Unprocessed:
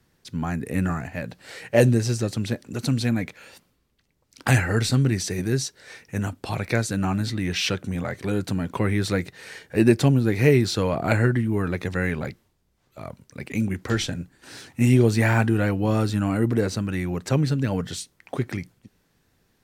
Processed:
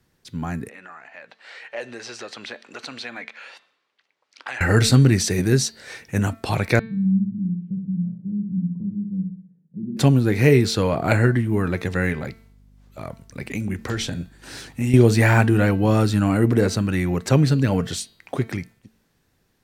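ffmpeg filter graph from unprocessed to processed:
ffmpeg -i in.wav -filter_complex "[0:a]asettb=1/sr,asplit=3[link_01][link_02][link_03];[link_01]atrim=end=0.694[link_04];[link_02]atrim=start=0.69:end=4.61,asetpts=PTS-STARTPTS,afade=type=in:duration=0.004:curve=qsin,afade=type=out:start_time=3.916:duration=0.004:curve=qsin,highpass=790,lowpass=3600,acompressor=threshold=-43dB:ratio=2:attack=3.2:release=140:knee=1:detection=peak[link_05];[link_03]atrim=start=4.606[link_06];[link_04][link_05]acrossfade=duration=0.004:curve1=hsin:curve2=qsin[link_07];[link_07][link_06]acrossfade=duration=0.004:curve1=qsin:curve2=hsin,asettb=1/sr,asplit=3[link_08][link_09][link_10];[link_08]atrim=end=6.794[link_11];[link_09]atrim=start=6.79:end=9.97,asetpts=PTS-STARTPTS,afade=type=in:duration=0.004:curve=qsin,afade=type=out:start_time=3.176:duration=0.004:curve=qsin,asuperpass=centerf=180:order=4:qfactor=3.6,aecho=1:1:63|126|189|252|315|378:0.562|0.264|0.124|0.0584|0.0274|0.0129,atrim=end_sample=140238[link_12];[link_10]atrim=start=9.966[link_13];[link_11][link_12]acrossfade=duration=0.004:curve1=hsin:curve2=qsin[link_14];[link_14][link_13]acrossfade=duration=0.004:curve1=qsin:curve2=hsin,asettb=1/sr,asplit=3[link_15][link_16][link_17];[link_15]atrim=end=12.124[link_18];[link_16]atrim=start=12.12:end=14.94,asetpts=PTS-STARTPTS,afade=type=in:duration=0.004:curve=qsin,afade=type=out:start_time=2.816:duration=0.004:curve=qsin,acompressor=threshold=-29dB:ratio=2:attack=3.2:release=140:knee=1:detection=peak,aeval=exprs='val(0)+0.002*(sin(2*PI*50*n/s)+sin(2*PI*2*50*n/s)/2+sin(2*PI*3*50*n/s)/3+sin(2*PI*4*50*n/s)/4+sin(2*PI*5*50*n/s)/5)':channel_layout=same[link_19];[link_17]atrim=start=14.936[link_20];[link_18][link_19]acrossfade=duration=0.004:curve1=hsin:curve2=qsin[link_21];[link_21][link_20]acrossfade=duration=0.004:curve1=qsin:curve2=hsin,bandreject=frequency=223.8:width_type=h:width=4,bandreject=frequency=447.6:width_type=h:width=4,bandreject=frequency=671.4:width_type=h:width=4,bandreject=frequency=895.2:width_type=h:width=4,bandreject=frequency=1119:width_type=h:width=4,bandreject=frequency=1342.8:width_type=h:width=4,bandreject=frequency=1566.6:width_type=h:width=4,bandreject=frequency=1790.4:width_type=h:width=4,bandreject=frequency=2014.2:width_type=h:width=4,bandreject=frequency=2238:width_type=h:width=4,bandreject=frequency=2461.8:width_type=h:width=4,bandreject=frequency=2685.6:width_type=h:width=4,bandreject=frequency=2909.4:width_type=h:width=4,bandreject=frequency=3133.2:width_type=h:width=4,bandreject=frequency=3357:width_type=h:width=4,bandreject=frequency=3580.8:width_type=h:width=4,bandreject=frequency=3804.6:width_type=h:width=4,bandreject=frequency=4028.4:width_type=h:width=4,bandreject=frequency=4252.2:width_type=h:width=4,bandreject=frequency=4476:width_type=h:width=4,bandreject=frequency=4699.8:width_type=h:width=4,dynaudnorm=framelen=330:gausssize=11:maxgain=11.5dB,volume=-1dB" out.wav

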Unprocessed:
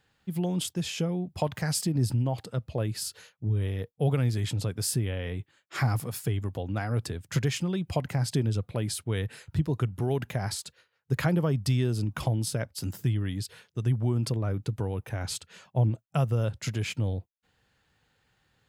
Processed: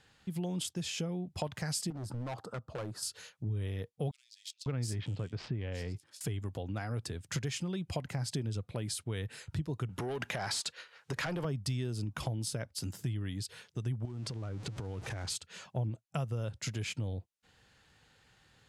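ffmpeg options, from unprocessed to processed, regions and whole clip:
ffmpeg -i in.wav -filter_complex "[0:a]asettb=1/sr,asplit=3[link_01][link_02][link_03];[link_01]atrim=end=1.904[link_04];[link_02]atrim=start=1.9:end=3.03,asetpts=PTS-STARTPTS,afade=type=in:duration=0.004:curve=qsin,afade=type=out:start_time=1.126:duration=0.004:curve=qsin,highpass=frequency=250:poles=1,highshelf=frequency=1700:width_type=q:width=3:gain=-10.5,asoftclip=type=hard:threshold=-32dB[link_05];[link_03]atrim=start=3.026[link_06];[link_04][link_05]acrossfade=duration=0.004:curve1=hsin:curve2=qsin[link_07];[link_07][link_06]acrossfade=duration=0.004:curve1=qsin:curve2=hsin,asettb=1/sr,asplit=3[link_08][link_09][link_10];[link_08]atrim=end=4.114[link_11];[link_09]atrim=start=4.11:end=6.21,asetpts=PTS-STARTPTS,afade=type=in:duration=0.004:curve=qsin,afade=type=out:start_time=2.096:duration=0.004:curve=qsin,adynamicsmooth=sensitivity=6.5:basefreq=2100,acrossover=split=3900[link_12][link_13];[link_12]adelay=550[link_14];[link_14][link_13]amix=inputs=2:normalize=0,atrim=end_sample=92610[link_15];[link_10]atrim=start=6.206[link_16];[link_11][link_15]acrossfade=duration=0.004:curve1=hsin:curve2=qsin[link_17];[link_17][link_16]acrossfade=duration=0.004:curve1=qsin:curve2=hsin,asettb=1/sr,asplit=3[link_18][link_19][link_20];[link_18]atrim=end=9.894[link_21];[link_19]atrim=start=9.89:end=11.45,asetpts=PTS-STARTPTS,afade=type=in:duration=0.004:curve=qsin,afade=type=out:start_time=1.556:duration=0.004:curve=qsin,asplit=2[link_22][link_23];[link_23]highpass=frequency=720:poles=1,volume=22dB,asoftclip=type=tanh:threshold=-12.5dB[link_24];[link_22][link_24]amix=inputs=2:normalize=0,lowpass=frequency=3800:poles=1,volume=-6dB,acompressor=threshold=-26dB:ratio=6:attack=3.2:release=140:knee=1:detection=peak[link_25];[link_20]atrim=start=11.446[link_26];[link_21][link_25]acrossfade=duration=0.004:curve1=hsin:curve2=qsin[link_27];[link_27][link_26]acrossfade=duration=0.004:curve1=qsin:curve2=hsin,asettb=1/sr,asplit=3[link_28][link_29][link_30];[link_28]atrim=end=14.054[link_31];[link_29]atrim=start=14.05:end=15.3,asetpts=PTS-STARTPTS,afade=type=in:duration=0.004:curve=qsin,afade=type=out:start_time=1.246:duration=0.004:curve=qsin,aeval=exprs='val(0)+0.5*0.0126*sgn(val(0))':channel_layout=same,acompressor=threshold=-32dB:ratio=6:attack=3.2:release=140:knee=1:detection=peak,lowpass=7900[link_32];[link_30]atrim=start=15.296[link_33];[link_31][link_32]acrossfade=duration=0.004:curve1=hsin:curve2=qsin[link_34];[link_34][link_33]acrossfade=duration=0.004:curve1=qsin:curve2=hsin,lowpass=9100,highshelf=frequency=4500:gain=6.5,acompressor=threshold=-47dB:ratio=2,volume=4dB" out.wav

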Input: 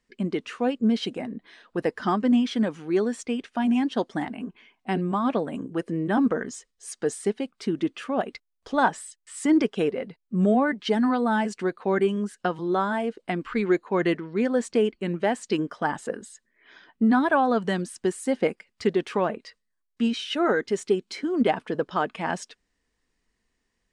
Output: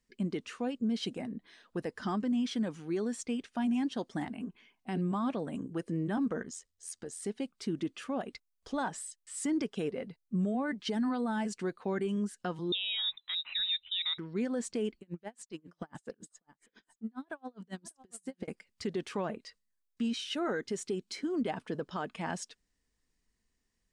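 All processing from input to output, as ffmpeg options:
ffmpeg -i in.wav -filter_complex "[0:a]asettb=1/sr,asplit=3[link_01][link_02][link_03];[link_01]atrim=end=6.424[link_04];[link_02]atrim=start=6.42:end=7.22,asetpts=PTS-STARTPTS,afade=type=in:duration=0.004:curve=qsin,afade=type=out:start_time=0.796:duration=0.004:curve=qsin,acompressor=threshold=-34dB:ratio=2:attack=3.2:release=140:knee=1:detection=peak,tremolo=f=85:d=0.571[link_05];[link_03]atrim=start=7.216[link_06];[link_04][link_05]acrossfade=duration=0.004:curve1=hsin:curve2=qsin[link_07];[link_07][link_06]acrossfade=duration=0.004:curve1=qsin:curve2=hsin,asettb=1/sr,asplit=3[link_08][link_09][link_10];[link_08]atrim=end=12.724[link_11];[link_09]atrim=start=12.72:end=14.18,asetpts=PTS-STARTPTS,afade=type=in:duration=0.004:curve=qsin,afade=type=out:start_time=1.456:duration=0.004:curve=qsin,lowpass=frequency=3400:width_type=q:width=0.5098,lowpass=frequency=3400:width_type=q:width=0.6013,lowpass=frequency=3400:width_type=q:width=0.9,lowpass=frequency=3400:width_type=q:width=2.563,afreqshift=-4000,asubboost=boost=9.5:cutoff=57[link_12];[link_10]atrim=start=14.176[link_13];[link_11][link_12]acrossfade=duration=0.004:curve1=hsin:curve2=qsin[link_14];[link_14][link_13]acrossfade=duration=0.004:curve1=qsin:curve2=hsin,asettb=1/sr,asplit=3[link_15][link_16][link_17];[link_15]atrim=end=15.004[link_18];[link_16]atrim=start=15:end=18.48,asetpts=PTS-STARTPTS,afade=type=in:duration=0.004:curve=qsin,afade=type=out:start_time=3.476:duration=0.004:curve=qsin,acompressor=threshold=-26dB:ratio=12:attack=3.2:release=140:knee=1:detection=peak,aecho=1:1:596:0.141,atrim=end_sample=153468,aeval=exprs='val(0)*pow(10,-37*(0.5-0.5*cos(2*PI*7.3*n/s))/20)':channel_layout=same[link_19];[link_17]atrim=start=18.476[link_20];[link_18][link_19]acrossfade=duration=0.004:curve1=hsin:curve2=qsin[link_21];[link_21][link_20]acrossfade=duration=0.004:curve1=qsin:curve2=hsin,bass=frequency=250:gain=6,treble=frequency=4000:gain=7,alimiter=limit=-16.5dB:level=0:latency=1:release=72,volume=-8.5dB" out.wav

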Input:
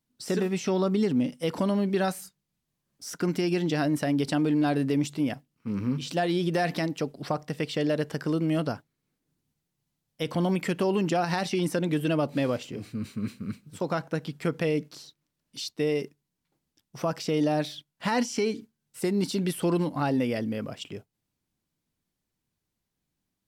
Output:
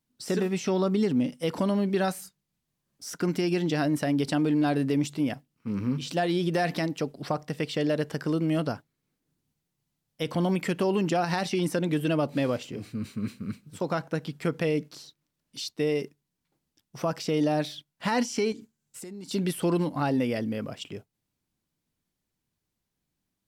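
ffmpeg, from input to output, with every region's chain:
ffmpeg -i in.wav -filter_complex "[0:a]asettb=1/sr,asplit=3[link_01][link_02][link_03];[link_01]atrim=end=18.524[link_04];[link_02]atrim=start=18.52:end=19.31,asetpts=PTS-STARTPTS,afade=type=in:duration=0.004:curve=qsin,afade=type=out:start_time=0.786:duration=0.004:curve=qsin,equalizer=frequency=7200:width_type=o:width=0.41:gain=8,acompressor=threshold=-39dB:ratio=6:attack=3.2:release=140:knee=1:detection=peak[link_05];[link_03]atrim=start=19.306[link_06];[link_04][link_05]acrossfade=duration=0.004:curve1=hsin:curve2=qsin[link_07];[link_07][link_06]acrossfade=duration=0.004:curve1=qsin:curve2=hsin" out.wav

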